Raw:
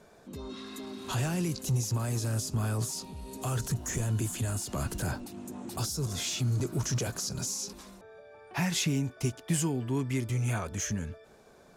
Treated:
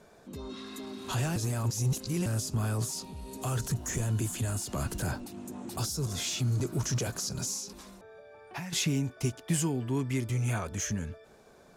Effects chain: 1.36–2.26 s: reverse; 7.58–8.73 s: compression 10:1, threshold -36 dBFS, peak gain reduction 11 dB

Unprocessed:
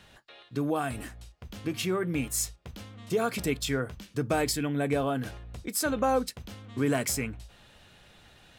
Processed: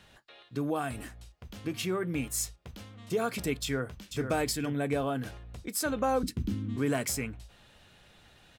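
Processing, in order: 3.63–4.25 s: echo throw 480 ms, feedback 10%, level -7 dB; 6.23–6.76 s: resonant low shelf 420 Hz +12.5 dB, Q 3; trim -2.5 dB

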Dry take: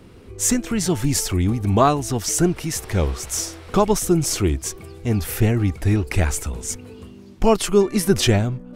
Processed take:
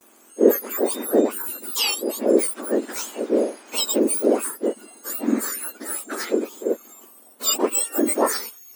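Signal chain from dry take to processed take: spectrum inverted on a logarithmic axis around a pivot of 1.8 kHz; gate with hold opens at -45 dBFS

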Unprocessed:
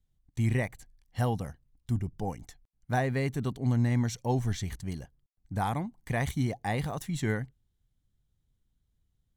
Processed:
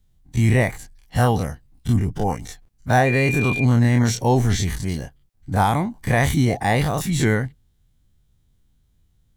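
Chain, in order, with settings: every event in the spectrogram widened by 60 ms; 3.05–3.63 s: whistle 2.4 kHz -32 dBFS; trim +8.5 dB

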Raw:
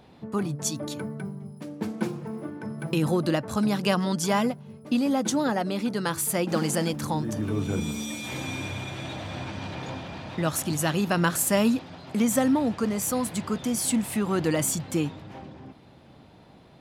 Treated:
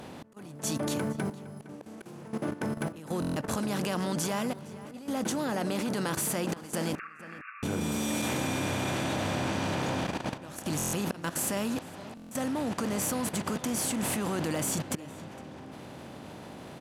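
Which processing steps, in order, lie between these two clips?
spectral levelling over time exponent 0.6; slow attack 388 ms; level held to a coarse grid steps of 14 dB; 6.95–7.63 s: brick-wall FIR band-pass 1.1–2.8 kHz; echo from a far wall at 79 m, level -16 dB; buffer glitch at 3.20/10.77/12.15 s, samples 1024, times 6; trim -2.5 dB

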